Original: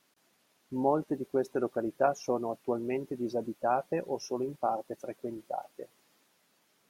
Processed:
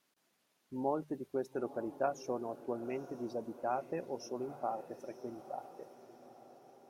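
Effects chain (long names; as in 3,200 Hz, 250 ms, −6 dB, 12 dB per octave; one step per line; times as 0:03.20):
mains-hum notches 50/100/150 Hz
on a send: feedback delay with all-pass diffusion 917 ms, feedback 52%, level −15 dB
on the sum: level −7 dB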